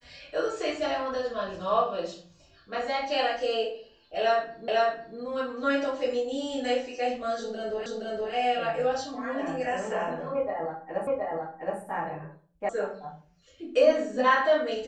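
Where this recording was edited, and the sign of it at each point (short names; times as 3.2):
4.68 repeat of the last 0.5 s
7.86 repeat of the last 0.47 s
11.07 repeat of the last 0.72 s
12.69 sound cut off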